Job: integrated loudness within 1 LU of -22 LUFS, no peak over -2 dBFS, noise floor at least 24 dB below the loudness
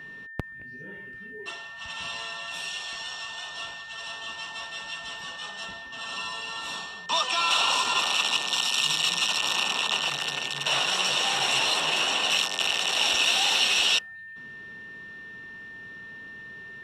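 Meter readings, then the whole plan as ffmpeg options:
steady tone 1800 Hz; tone level -40 dBFS; loudness -24.5 LUFS; peak -9.0 dBFS; loudness target -22.0 LUFS
-> -af "bandreject=f=1.8k:w=30"
-af "volume=2.5dB"

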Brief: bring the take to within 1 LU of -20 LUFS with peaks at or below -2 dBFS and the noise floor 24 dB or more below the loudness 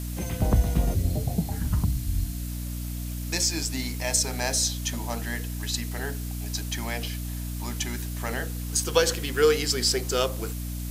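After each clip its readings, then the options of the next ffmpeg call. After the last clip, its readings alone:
hum 60 Hz; harmonics up to 300 Hz; hum level -30 dBFS; noise floor -33 dBFS; noise floor target -51 dBFS; loudness -27.0 LUFS; peak -4.5 dBFS; loudness target -20.0 LUFS
-> -af "bandreject=f=60:t=h:w=4,bandreject=f=120:t=h:w=4,bandreject=f=180:t=h:w=4,bandreject=f=240:t=h:w=4,bandreject=f=300:t=h:w=4"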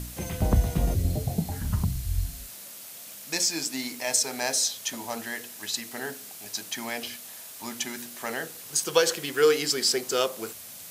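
hum none; noise floor -43 dBFS; noise floor target -52 dBFS
-> -af "afftdn=nr=9:nf=-43"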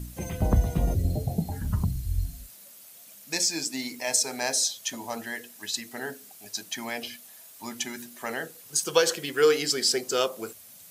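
noise floor -50 dBFS; noise floor target -52 dBFS
-> -af "afftdn=nr=6:nf=-50"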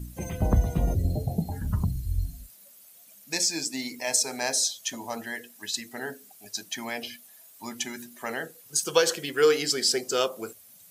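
noise floor -53 dBFS; loudness -27.5 LUFS; peak -5.0 dBFS; loudness target -20.0 LUFS
-> -af "volume=7.5dB,alimiter=limit=-2dB:level=0:latency=1"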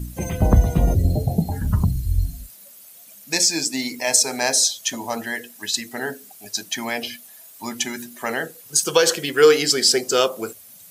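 loudness -20.5 LUFS; peak -2.0 dBFS; noise floor -45 dBFS

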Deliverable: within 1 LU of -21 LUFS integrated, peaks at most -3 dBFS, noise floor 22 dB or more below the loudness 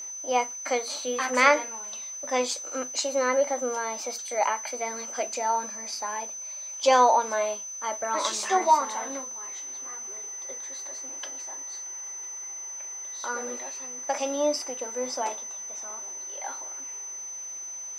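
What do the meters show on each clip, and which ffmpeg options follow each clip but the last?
steady tone 6100 Hz; tone level -35 dBFS; loudness -28.0 LUFS; peak -4.5 dBFS; loudness target -21.0 LUFS
-> -af "bandreject=f=6.1k:w=30"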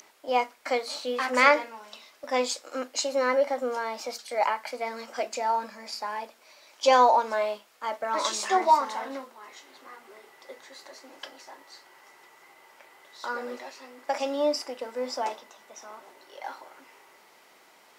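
steady tone none; loudness -27.0 LUFS; peak -4.5 dBFS; loudness target -21.0 LUFS
-> -af "volume=6dB,alimiter=limit=-3dB:level=0:latency=1"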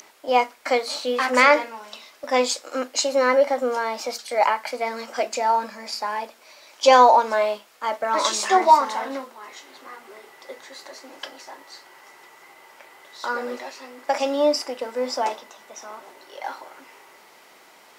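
loudness -21.5 LUFS; peak -3.0 dBFS; noise floor -52 dBFS

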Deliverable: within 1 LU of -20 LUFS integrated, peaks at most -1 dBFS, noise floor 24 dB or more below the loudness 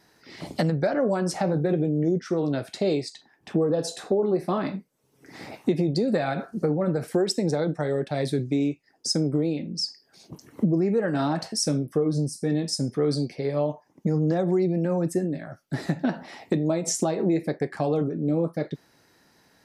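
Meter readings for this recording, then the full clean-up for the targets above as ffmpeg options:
loudness -26.0 LUFS; peak -10.5 dBFS; loudness target -20.0 LUFS
-> -af "volume=6dB"

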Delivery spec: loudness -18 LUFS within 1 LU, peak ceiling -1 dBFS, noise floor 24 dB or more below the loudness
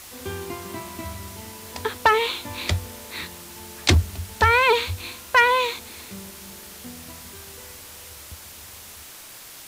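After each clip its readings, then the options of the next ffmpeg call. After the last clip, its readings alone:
noise floor -42 dBFS; noise floor target -47 dBFS; loudness -22.5 LUFS; peak -5.5 dBFS; loudness target -18.0 LUFS
-> -af "afftdn=nr=6:nf=-42"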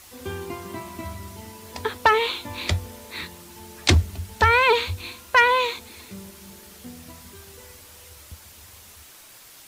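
noise floor -48 dBFS; loudness -22.0 LUFS; peak -5.5 dBFS; loudness target -18.0 LUFS
-> -af "volume=4dB"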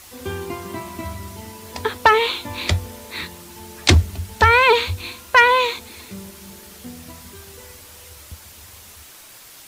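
loudness -18.0 LUFS; peak -1.5 dBFS; noise floor -44 dBFS

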